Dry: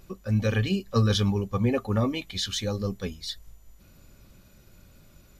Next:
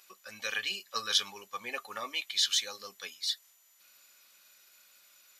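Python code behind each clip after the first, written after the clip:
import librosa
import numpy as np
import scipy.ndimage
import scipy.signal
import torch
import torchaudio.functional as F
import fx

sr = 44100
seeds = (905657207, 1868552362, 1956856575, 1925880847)

y = scipy.signal.sosfilt(scipy.signal.bessel(2, 1900.0, 'highpass', norm='mag', fs=sr, output='sos'), x)
y = F.gain(torch.from_numpy(y), 3.5).numpy()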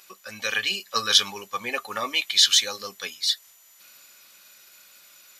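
y = fx.low_shelf(x, sr, hz=250.0, db=6.0)
y = fx.rider(y, sr, range_db=10, speed_s=2.0)
y = F.gain(torch.from_numpy(y), 7.5).numpy()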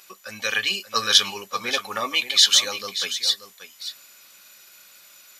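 y = x + 10.0 ** (-12.0 / 20.0) * np.pad(x, (int(582 * sr / 1000.0), 0))[:len(x)]
y = F.gain(torch.from_numpy(y), 2.0).numpy()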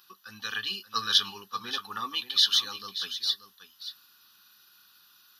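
y = fx.fixed_phaser(x, sr, hz=2200.0, stages=6)
y = F.gain(torch.from_numpy(y), -5.5).numpy()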